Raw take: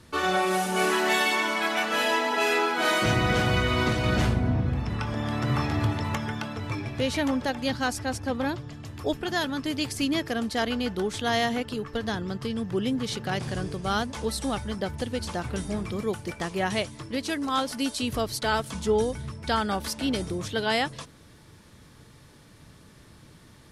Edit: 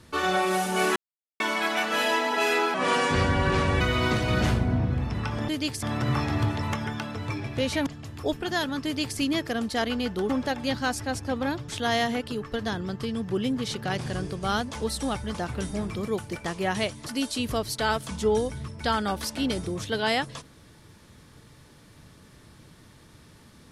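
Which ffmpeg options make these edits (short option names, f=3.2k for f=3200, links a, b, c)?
-filter_complex "[0:a]asplit=12[a][b][c][d][e][f][g][h][i][j][k][l];[a]atrim=end=0.96,asetpts=PTS-STARTPTS,afade=t=out:st=0.956:d=0.004:c=hsin[m];[b]atrim=start=0.96:end=1.4,asetpts=PTS-STARTPTS,volume=0[n];[c]atrim=start=1.4:end=2.744,asetpts=PTS-STARTPTS,afade=t=in:d=0.004:c=hsin[o];[d]atrim=start=2.74:end=3.56,asetpts=PTS-STARTPTS,asetrate=33957,aresample=44100[p];[e]atrim=start=3.556:end=5.242[q];[f]atrim=start=9.648:end=9.992[r];[g]atrim=start=5.238:end=7.282[s];[h]atrim=start=8.668:end=11.102[t];[i]atrim=start=7.278:end=8.672[u];[j]atrim=start=11.098:end=14.762[v];[k]atrim=start=15.298:end=17.022[w];[l]atrim=start=17.698[x];[m][n][o]concat=n=3:v=0:a=1[y];[y][p]acrossfade=d=0.004:c1=hsin:c2=hsin[z];[z][q]acrossfade=d=0.004:c1=hsin:c2=hsin[aa];[aa][r]acrossfade=d=0.004:c1=hsin:c2=hsin[ab];[ab][s]acrossfade=d=0.004:c1=hsin:c2=hsin[ac];[ac][t]acrossfade=d=0.004:c1=hsin:c2=hsin[ad];[ad][u]acrossfade=d=0.004:c1=hsin:c2=hsin[ae];[ae][v]acrossfade=d=0.004:c1=hsin:c2=hsin[af];[af][w]acrossfade=d=0.004:c1=hsin:c2=hsin[ag];[ag][x]acrossfade=d=0.004:c1=hsin:c2=hsin"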